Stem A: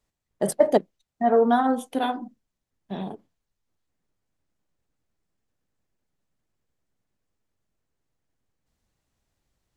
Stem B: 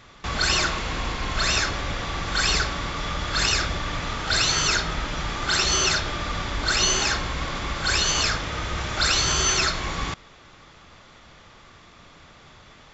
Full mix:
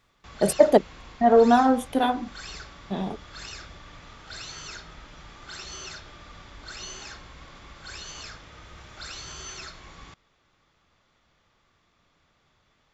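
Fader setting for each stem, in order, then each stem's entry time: +2.5 dB, -18.0 dB; 0.00 s, 0.00 s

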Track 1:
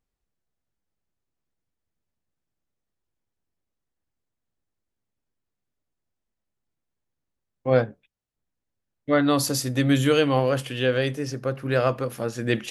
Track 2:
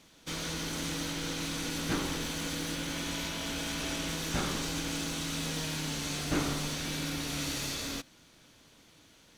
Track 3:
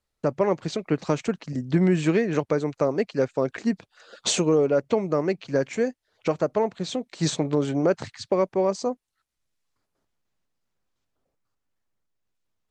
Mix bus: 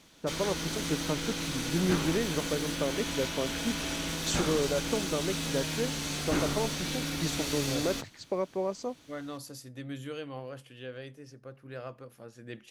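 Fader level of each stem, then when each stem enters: -19.5 dB, +1.0 dB, -9.0 dB; 0.00 s, 0.00 s, 0.00 s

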